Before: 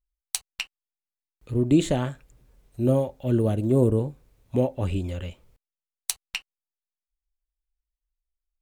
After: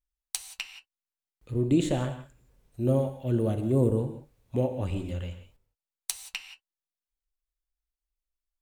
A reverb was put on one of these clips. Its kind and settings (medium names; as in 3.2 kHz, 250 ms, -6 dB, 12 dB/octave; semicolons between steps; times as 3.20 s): gated-style reverb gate 200 ms flat, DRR 8 dB; trim -4.5 dB